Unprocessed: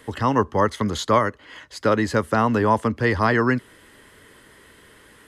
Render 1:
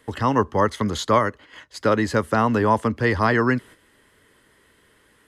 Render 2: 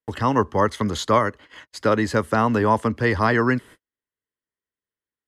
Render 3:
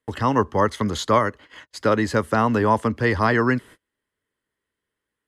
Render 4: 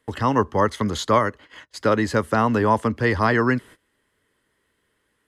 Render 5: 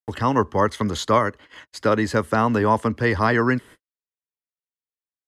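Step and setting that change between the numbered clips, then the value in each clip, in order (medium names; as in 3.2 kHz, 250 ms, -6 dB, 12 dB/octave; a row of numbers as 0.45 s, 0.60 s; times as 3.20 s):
gate, range: -8 dB, -46 dB, -33 dB, -20 dB, -60 dB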